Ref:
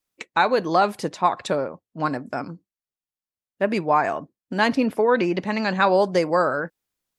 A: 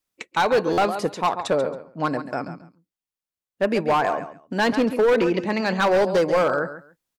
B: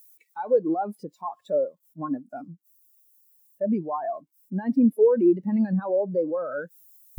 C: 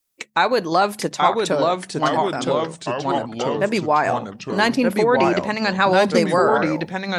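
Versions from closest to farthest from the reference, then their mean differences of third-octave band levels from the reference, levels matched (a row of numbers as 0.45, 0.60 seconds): A, C, B; 4.5, 6.0, 13.0 decibels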